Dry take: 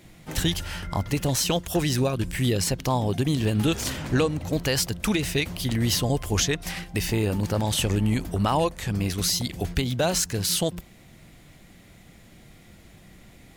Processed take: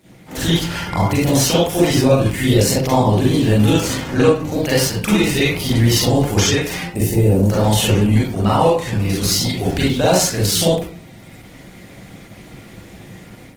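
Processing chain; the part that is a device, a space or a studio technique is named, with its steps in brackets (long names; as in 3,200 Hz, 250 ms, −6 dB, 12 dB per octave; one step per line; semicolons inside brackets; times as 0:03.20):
0:06.81–0:07.50: flat-topped bell 2,300 Hz −12 dB 2.8 octaves
far-field microphone of a smart speaker (convolution reverb RT60 0.50 s, pre-delay 36 ms, DRR −6.5 dB; high-pass filter 92 Hz 6 dB per octave; automatic gain control gain up to 8 dB; level −1 dB; Opus 16 kbit/s 48,000 Hz)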